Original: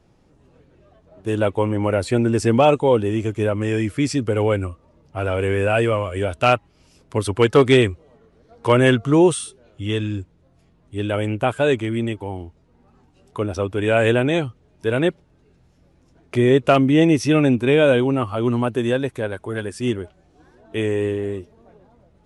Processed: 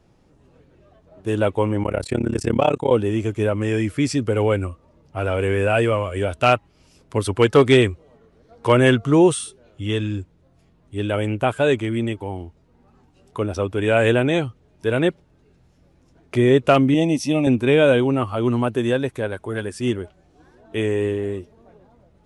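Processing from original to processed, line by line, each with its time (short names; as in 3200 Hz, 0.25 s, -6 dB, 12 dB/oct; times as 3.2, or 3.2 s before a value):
1.83–2.91 AM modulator 34 Hz, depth 95%
16.94–17.47 fixed phaser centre 400 Hz, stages 6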